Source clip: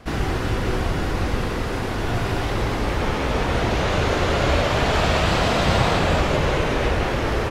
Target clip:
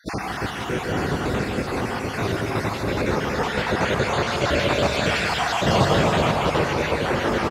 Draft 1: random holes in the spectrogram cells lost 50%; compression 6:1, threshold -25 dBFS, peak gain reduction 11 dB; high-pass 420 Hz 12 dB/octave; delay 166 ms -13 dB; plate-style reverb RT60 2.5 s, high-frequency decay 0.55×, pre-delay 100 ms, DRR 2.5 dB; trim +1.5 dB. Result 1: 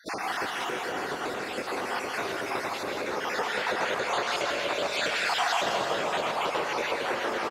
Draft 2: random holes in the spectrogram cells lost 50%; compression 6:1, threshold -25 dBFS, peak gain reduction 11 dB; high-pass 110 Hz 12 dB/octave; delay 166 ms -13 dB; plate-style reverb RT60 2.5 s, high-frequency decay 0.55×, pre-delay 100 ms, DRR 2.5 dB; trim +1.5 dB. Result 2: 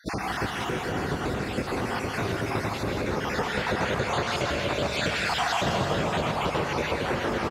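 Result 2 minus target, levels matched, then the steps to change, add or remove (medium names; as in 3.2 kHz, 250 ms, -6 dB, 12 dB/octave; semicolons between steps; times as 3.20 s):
compression: peak gain reduction +11 dB
remove: compression 6:1, threshold -25 dBFS, peak gain reduction 11 dB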